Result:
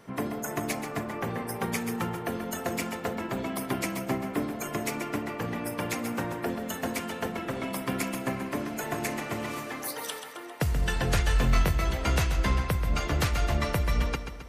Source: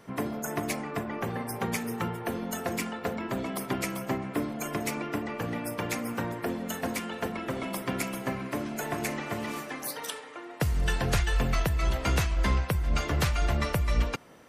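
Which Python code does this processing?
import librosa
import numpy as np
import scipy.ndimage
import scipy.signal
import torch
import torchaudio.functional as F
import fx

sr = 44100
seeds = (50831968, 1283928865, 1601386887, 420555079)

y = fx.doubler(x, sr, ms=22.0, db=-5.5, at=(11.25, 11.77))
y = fx.echo_feedback(y, sr, ms=133, feedback_pct=55, wet_db=-9.5)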